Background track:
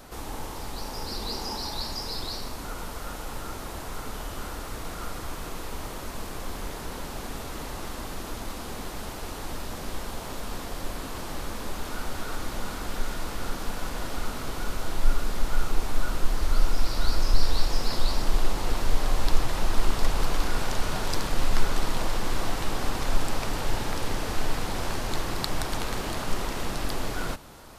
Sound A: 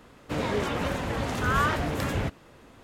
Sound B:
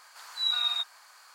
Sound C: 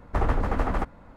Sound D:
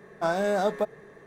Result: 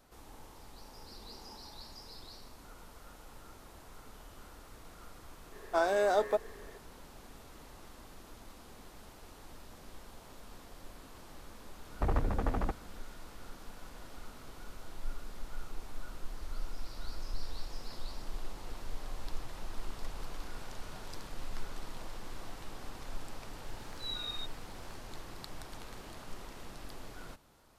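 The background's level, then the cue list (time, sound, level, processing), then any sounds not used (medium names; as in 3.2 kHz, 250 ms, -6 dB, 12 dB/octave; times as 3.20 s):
background track -17 dB
5.52 s: add D -2.5 dB + steep high-pass 260 Hz
11.87 s: add C -6 dB + local Wiener filter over 41 samples
23.63 s: add B -12.5 dB
not used: A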